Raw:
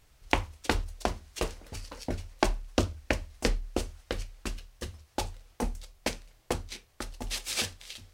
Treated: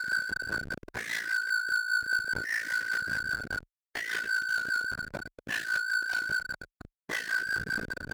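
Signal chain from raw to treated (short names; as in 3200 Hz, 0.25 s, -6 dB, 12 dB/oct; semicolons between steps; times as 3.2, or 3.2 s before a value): four-band scrambler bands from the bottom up 4123; Paulstretch 4.4×, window 0.05 s, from 3.19; notches 50/100/150/200/250/300/350 Hz; sample leveller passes 5; dynamic EQ 770 Hz, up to -6 dB, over -50 dBFS, Q 2.1; Schmitt trigger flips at -35 dBFS; HPF 130 Hz 6 dB/oct; ring modulator 28 Hz; rotary speaker horn 5 Hz; spectral expander 1.5:1; gain -6 dB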